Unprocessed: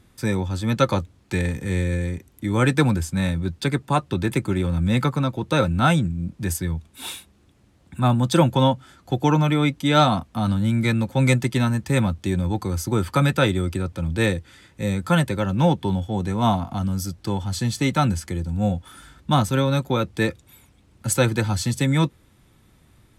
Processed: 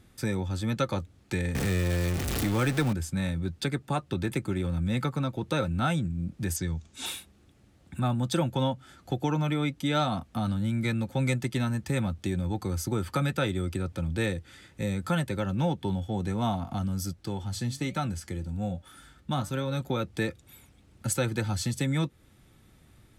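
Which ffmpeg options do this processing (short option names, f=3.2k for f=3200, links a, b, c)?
-filter_complex "[0:a]asettb=1/sr,asplit=3[a][b][c];[a]atrim=end=1.554[d];[b]atrim=start=1.55:end=2.93,asetpts=PTS-STARTPTS,afade=t=in:d=0.004:c=qsin,afade=t=out:st=1.376:d=0.004:c=qsin,aeval=exprs='val(0)+0.5*0.1*sgn(val(0))':c=same[e];[c]atrim=start=2.926[f];[d][e]acrossfade=d=0.004:c1=hsin:c2=qsin[g];[g][f]acrossfade=d=0.004:c1=qsin:c2=hsin,asettb=1/sr,asplit=3[h][i][j];[h]atrim=end=6.564[k];[i]atrim=start=6.56:end=7.06,asetpts=PTS-STARTPTS,afade=t=in:d=0.004:c=qsin,afade=t=out:st=0.496:d=0.004:c=qsin,lowpass=f=6.6k:t=q:w=2.8[l];[j]atrim=start=7.056[m];[k][l]acrossfade=d=0.004:c1=hsin:c2=qsin[n];[n][m]acrossfade=d=0.004:c1=qsin:c2=hsin,asettb=1/sr,asplit=3[o][p][q];[o]atrim=end=17.134[r];[p]atrim=start=17.13:end=19.81,asetpts=PTS-STARTPTS,afade=t=in:d=0.004:c=qsin,afade=t=out:st=2.676:d=0.004:c=qsin,flanger=delay=4.9:depth=4.9:regen=82:speed=1.2:shape=triangular[s];[q]atrim=start=19.806[t];[r][s]acrossfade=d=0.004:c1=hsin:c2=qsin[u];[u][t]acrossfade=d=0.004:c1=qsin:c2=hsin,acompressor=threshold=-27dB:ratio=2,bandreject=f=1k:w=9.2,volume=-2dB"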